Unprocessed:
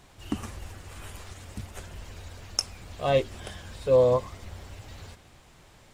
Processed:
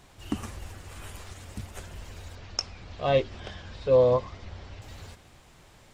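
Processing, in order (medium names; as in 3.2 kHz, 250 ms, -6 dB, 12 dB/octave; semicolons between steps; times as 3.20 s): 2.35–4.82 s: low-pass 5.6 kHz 24 dB/octave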